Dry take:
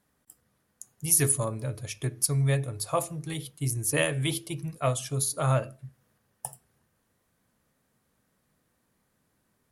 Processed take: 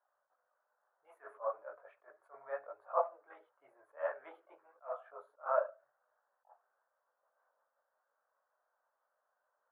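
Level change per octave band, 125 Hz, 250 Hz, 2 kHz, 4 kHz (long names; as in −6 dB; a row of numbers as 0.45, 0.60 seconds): below −40 dB, below −35 dB, −15.0 dB, below −40 dB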